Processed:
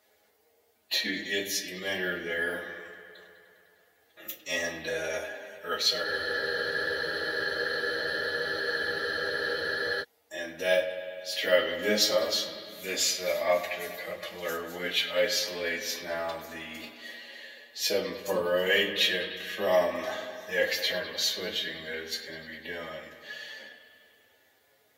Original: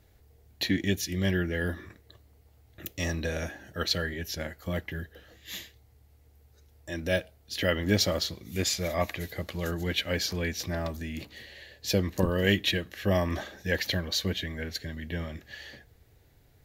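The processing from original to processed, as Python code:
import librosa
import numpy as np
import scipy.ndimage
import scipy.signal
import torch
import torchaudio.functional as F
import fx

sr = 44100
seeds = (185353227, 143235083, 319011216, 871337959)

y = fx.echo_bbd(x, sr, ms=67, stages=2048, feedback_pct=78, wet_db=-13.0)
y = fx.stretch_vocoder(y, sr, factor=1.5)
y = scipy.signal.sosfilt(scipy.signal.butter(2, 500.0, 'highpass', fs=sr, output='sos'), y)
y = fx.room_shoebox(y, sr, seeds[0], volume_m3=130.0, walls='furnished', distance_m=1.4)
y = fx.spec_freeze(y, sr, seeds[1], at_s=6.06, hold_s=3.95)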